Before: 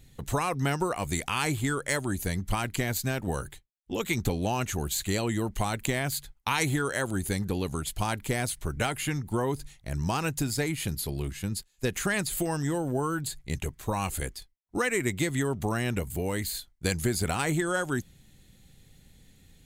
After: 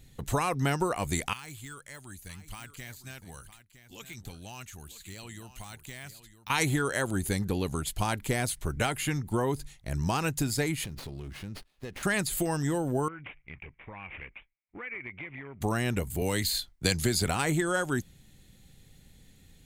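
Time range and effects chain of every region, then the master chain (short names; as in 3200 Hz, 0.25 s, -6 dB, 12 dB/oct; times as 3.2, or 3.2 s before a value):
1.33–6.5 de-esser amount 75% + passive tone stack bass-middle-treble 5-5-5 + echo 0.96 s -13 dB
10.84–12.03 LPF 9100 Hz + compressor 4:1, threshold -36 dBFS + running maximum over 5 samples
13.08–15.61 careless resampling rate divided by 6×, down none, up filtered + ladder low-pass 2400 Hz, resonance 80% + compressor 2:1, threshold -41 dBFS
16.21–17.27 dynamic EQ 4200 Hz, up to +7 dB, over -49 dBFS, Q 1.1 + three-band squash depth 40%
whole clip: dry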